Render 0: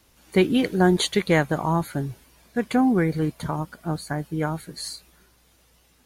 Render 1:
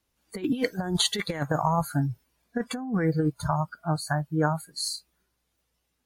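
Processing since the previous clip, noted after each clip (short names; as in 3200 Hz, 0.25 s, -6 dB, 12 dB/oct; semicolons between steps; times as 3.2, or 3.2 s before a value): spectral noise reduction 20 dB; negative-ratio compressor -24 dBFS, ratio -0.5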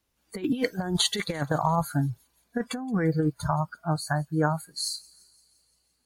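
thin delay 0.172 s, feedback 63%, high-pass 5100 Hz, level -20 dB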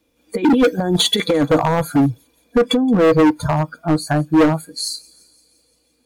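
small resonant body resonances 300/480/2400/3400 Hz, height 17 dB, ringing for 50 ms; overloaded stage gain 16 dB; on a send at -19 dB: reverb RT60 0.15 s, pre-delay 4 ms; on the sum: gain +6 dB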